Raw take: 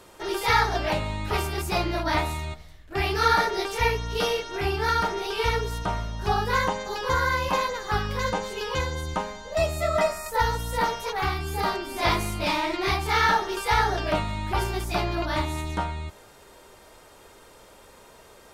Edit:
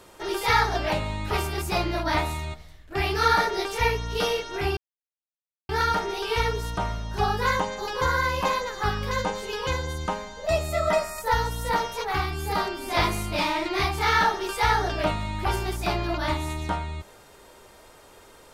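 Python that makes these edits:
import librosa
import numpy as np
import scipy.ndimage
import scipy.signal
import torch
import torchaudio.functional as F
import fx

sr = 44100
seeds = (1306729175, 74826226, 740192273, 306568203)

y = fx.edit(x, sr, fx.insert_silence(at_s=4.77, length_s=0.92), tone=tone)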